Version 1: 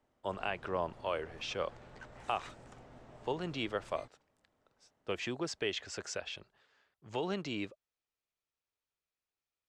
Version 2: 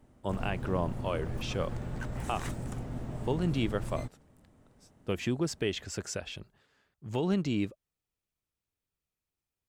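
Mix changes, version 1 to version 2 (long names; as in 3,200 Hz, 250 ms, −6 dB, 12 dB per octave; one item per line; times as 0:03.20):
background +8.0 dB
master: remove three-way crossover with the lows and the highs turned down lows −13 dB, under 410 Hz, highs −24 dB, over 7,300 Hz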